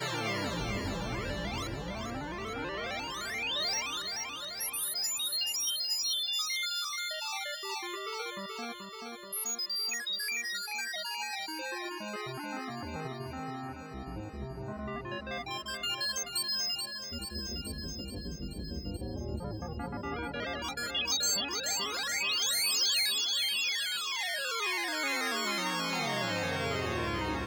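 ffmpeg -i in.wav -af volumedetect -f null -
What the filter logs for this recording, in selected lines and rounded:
mean_volume: -34.8 dB
max_volume: -19.2 dB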